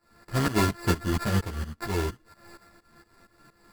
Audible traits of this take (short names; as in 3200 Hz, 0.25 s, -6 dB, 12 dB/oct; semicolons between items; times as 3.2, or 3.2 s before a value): a buzz of ramps at a fixed pitch in blocks of 32 samples; tremolo saw up 4.3 Hz, depth 90%; aliases and images of a low sample rate 3100 Hz, jitter 0%; a shimmering, thickened sound